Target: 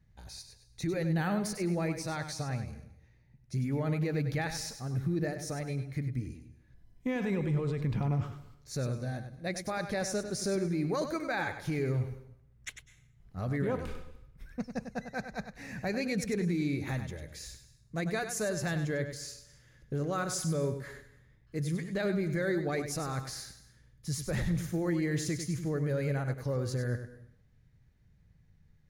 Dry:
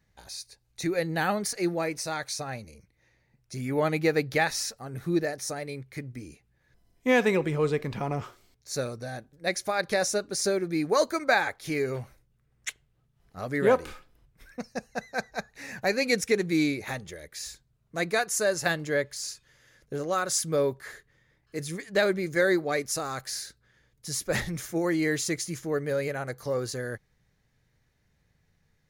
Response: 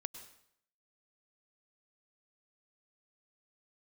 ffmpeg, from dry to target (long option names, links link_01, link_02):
-filter_complex "[0:a]bass=frequency=250:gain=13,treble=frequency=4000:gain=-3,alimiter=limit=-18.5dB:level=0:latency=1:release=35,asplit=2[link_01][link_02];[1:a]atrim=start_sample=2205,adelay=98[link_03];[link_02][link_03]afir=irnorm=-1:irlink=0,volume=-6dB[link_04];[link_01][link_04]amix=inputs=2:normalize=0,volume=-5.5dB"